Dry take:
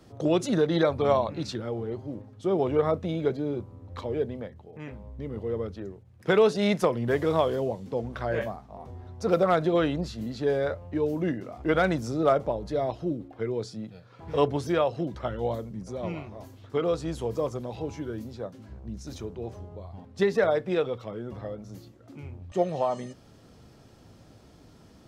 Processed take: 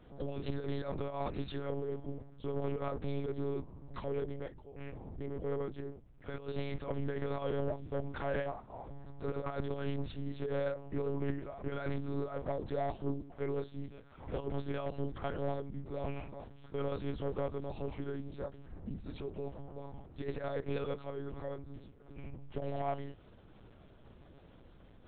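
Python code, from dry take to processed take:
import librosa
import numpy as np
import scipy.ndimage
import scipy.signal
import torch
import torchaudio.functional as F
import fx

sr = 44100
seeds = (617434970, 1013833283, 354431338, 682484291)

y = fx.over_compress(x, sr, threshold_db=-26.0, ratio=-0.5)
y = 10.0 ** (-21.5 / 20.0) * np.tanh(y / 10.0 ** (-21.5 / 20.0))
y = fx.lpc_monotone(y, sr, seeds[0], pitch_hz=140.0, order=8)
y = F.gain(torch.from_numpy(y), -6.0).numpy()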